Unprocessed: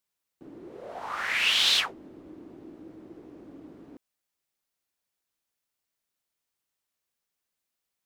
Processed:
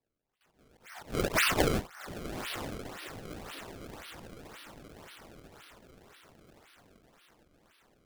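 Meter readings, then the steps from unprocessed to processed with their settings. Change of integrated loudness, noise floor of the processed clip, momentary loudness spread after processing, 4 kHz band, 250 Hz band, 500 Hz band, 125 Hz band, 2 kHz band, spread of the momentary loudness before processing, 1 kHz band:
-10.0 dB, -76 dBFS, 24 LU, -12.0 dB, +6.5 dB, +9.0 dB, +16.5 dB, -4.5 dB, 19 LU, +0.5 dB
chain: high-pass sweep 2800 Hz -> 260 Hz, 0.51–3.29; high shelf 4500 Hz -10 dB; LFO high-pass saw down 3.9 Hz 470–6200 Hz; on a send: diffused feedback echo 0.983 s, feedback 50%, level -11.5 dB; on the sum: decimation with a swept rate 28×, swing 160% 1.9 Hz; in parallel at 0 dB: compressor, threshold -46 dBFS, peak gain reduction 27 dB; on the sum: gain -5.5 dB

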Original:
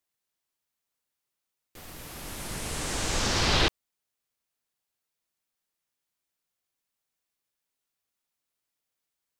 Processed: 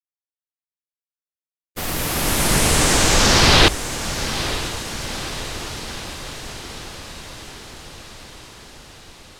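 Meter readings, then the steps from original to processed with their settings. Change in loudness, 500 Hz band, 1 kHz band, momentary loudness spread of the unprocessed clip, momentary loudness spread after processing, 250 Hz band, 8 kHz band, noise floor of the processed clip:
+9.5 dB, +13.5 dB, +13.5 dB, 18 LU, 23 LU, +14.0 dB, +15.5 dB, under -85 dBFS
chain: notches 50/100 Hz; in parallel at 0 dB: limiter -24 dBFS, peak gain reduction 11.5 dB; on the sum: gate -41 dBFS, range -41 dB; AGC gain up to 14 dB; diffused feedback echo 0.926 s, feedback 65%, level -11 dB

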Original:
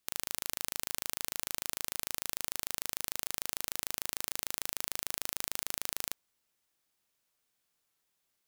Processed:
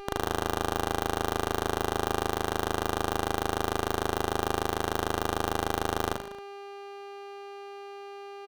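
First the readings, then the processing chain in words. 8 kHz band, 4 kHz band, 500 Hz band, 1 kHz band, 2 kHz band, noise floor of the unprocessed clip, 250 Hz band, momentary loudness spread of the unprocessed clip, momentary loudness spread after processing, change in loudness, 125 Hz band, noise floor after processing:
-3.5 dB, +3.5 dB, +21.5 dB, +19.0 dB, +9.0 dB, -80 dBFS, +20.5 dB, 0 LU, 13 LU, +5.5 dB, +20.5 dB, -43 dBFS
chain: block floating point 3-bit; LPF 2000 Hz 6 dB/oct; reverse bouncing-ball echo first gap 40 ms, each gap 1.15×, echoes 5; buzz 400 Hz, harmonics 6, -51 dBFS -2 dB/oct; running maximum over 17 samples; gain +8.5 dB

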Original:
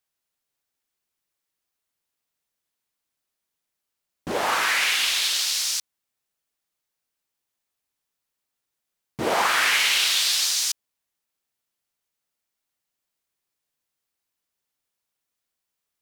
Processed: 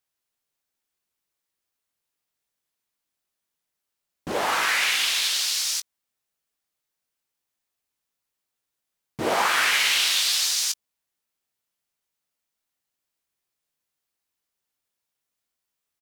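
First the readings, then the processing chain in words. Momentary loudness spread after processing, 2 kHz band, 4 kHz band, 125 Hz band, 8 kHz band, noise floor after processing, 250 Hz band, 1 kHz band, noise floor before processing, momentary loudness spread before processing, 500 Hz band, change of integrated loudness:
9 LU, -0.5 dB, -0.5 dB, -1.0 dB, -0.5 dB, -84 dBFS, -0.5 dB, -0.5 dB, -83 dBFS, 9 LU, -0.5 dB, -0.5 dB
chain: doubler 19 ms -10 dB; gain -1 dB

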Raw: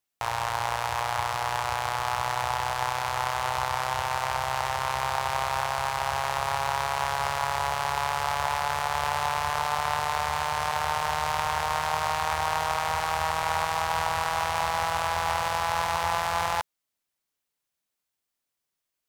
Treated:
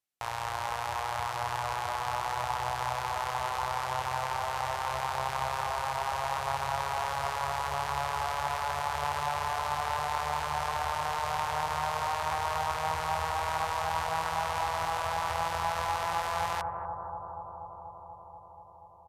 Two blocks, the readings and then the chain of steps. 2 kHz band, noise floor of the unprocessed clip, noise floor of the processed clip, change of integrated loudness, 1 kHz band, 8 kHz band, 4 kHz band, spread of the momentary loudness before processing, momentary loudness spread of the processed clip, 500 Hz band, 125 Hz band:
-5.5 dB, -84 dBFS, -49 dBFS, -4.5 dB, -3.5 dB, -6.0 dB, -6.0 dB, 2 LU, 7 LU, -3.5 dB, -3.5 dB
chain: analogue delay 0.241 s, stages 2048, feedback 81%, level -5.5 dB; downsampling 32000 Hz; gain -6 dB

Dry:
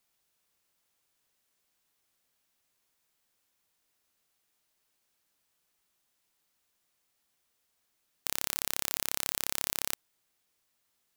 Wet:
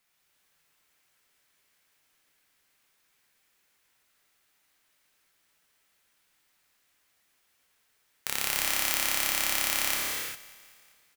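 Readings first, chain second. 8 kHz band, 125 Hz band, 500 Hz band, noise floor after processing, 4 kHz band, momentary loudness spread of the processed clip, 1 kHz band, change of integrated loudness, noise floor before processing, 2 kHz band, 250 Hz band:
+5.5 dB, +2.0 dB, +5.0 dB, -71 dBFS, +7.5 dB, 11 LU, +8.0 dB, +5.5 dB, -78 dBFS, +11.0 dB, +5.0 dB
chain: bell 1900 Hz +7 dB 1.4 oct; on a send: feedback echo 0.196 s, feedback 58%, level -18.5 dB; on the sum: non-linear reverb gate 0.43 s flat, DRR -3 dB

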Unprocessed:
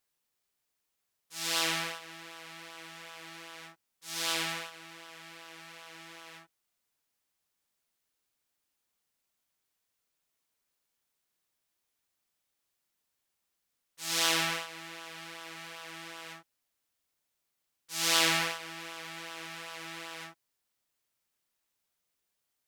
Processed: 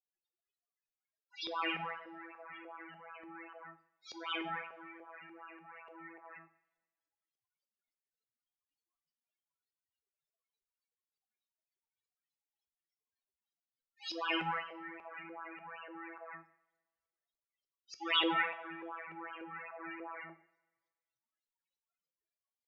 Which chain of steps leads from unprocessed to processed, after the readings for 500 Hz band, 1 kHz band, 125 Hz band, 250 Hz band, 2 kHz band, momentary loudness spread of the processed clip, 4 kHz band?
-2.5 dB, -1.0 dB, -8.5 dB, 0.0 dB, -5.0 dB, 19 LU, -8.0 dB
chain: loudest bins only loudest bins 8; LFO low-pass saw up 3.4 Hz 450–5800 Hz; two-slope reverb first 0.56 s, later 1.6 s, from -20 dB, DRR 9 dB; gain +1 dB

